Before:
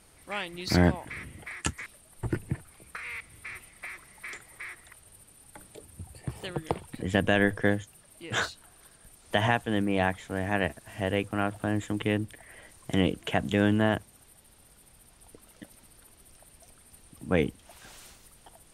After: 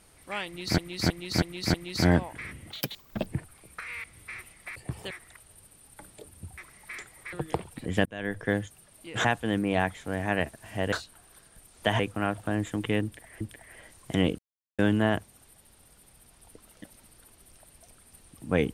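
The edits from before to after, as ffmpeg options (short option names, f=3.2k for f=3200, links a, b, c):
-filter_complex "[0:a]asplit=18[a][b][c][d][e][f][g][h][i][j][k][l][m][n][o][p][q][r];[a]atrim=end=0.782[s];[b]atrim=start=0.458:end=0.782[t];[c]atrim=start=0.458:end=0.782[u];[d]atrim=start=0.458:end=0.782[v];[e]atrim=start=0.458:end=1.434[w];[f]atrim=start=1.43:end=2.43,asetpts=PTS-STARTPTS,asetrate=79380,aresample=44100[x];[g]atrim=start=2.426:end=3.922[y];[h]atrim=start=6.138:end=6.492[z];[i]atrim=start=4.668:end=6.142[aa];[j]atrim=start=3.918:end=4.672[ab];[k]atrim=start=6.488:end=7.22,asetpts=PTS-STARTPTS,afade=t=out:st=0.728:d=0.004:c=hsin[ac];[l]atrim=start=7.22:end=8.412,asetpts=PTS-STARTPTS,afade=t=in:d=0.58[ad];[m]atrim=start=9.478:end=11.162[ae];[n]atrim=start=8.408:end=9.482[af];[o]atrim=start=11.158:end=12.572[ag];[p]atrim=start=12.198:end=13.18,asetpts=PTS-STARTPTS,afade=t=out:st=0.978:d=0.004:c=hsin[ah];[q]atrim=start=13.18:end=13.58,asetpts=PTS-STARTPTS,volume=0[ai];[r]atrim=start=13.58,asetpts=PTS-STARTPTS,afade=t=in:d=0.004:c=hsin[aj];[s][t]acrossfade=d=0.004:c1=hsin:c2=hsin[ak];[ak][u]acrossfade=d=0.004:c1=hsin:c2=hsin[al];[al][v]acrossfade=d=0.004:c1=hsin:c2=hsin[am];[am][w]acrossfade=d=0.004:c1=hsin:c2=hsin[an];[an][x]acrossfade=d=0.004:c1=hsin:c2=hsin[ao];[ao][y]acrossfade=d=0.004:c1=hsin:c2=hsin[ap];[ap][z]acrossfade=d=0.004:c1=hsin:c2=hsin[aq];[aq][aa]acrossfade=d=0.004:c1=hsin:c2=hsin[ar];[ar][ab]acrossfade=d=0.004:c1=hsin:c2=hsin[as];[ac][ad]concat=n=2:v=0:a=1[at];[as][at]acrossfade=d=0.004:c1=hsin:c2=hsin[au];[au][ae]acrossfade=d=0.004:c1=hsin:c2=hsin[av];[av][af]acrossfade=d=0.004:c1=hsin:c2=hsin[aw];[aw][ag]acrossfade=d=0.004:c1=hsin:c2=hsin[ax];[ah][ai][aj]concat=n=3:v=0:a=1[ay];[ax][ay]acrossfade=d=0.004:c1=hsin:c2=hsin"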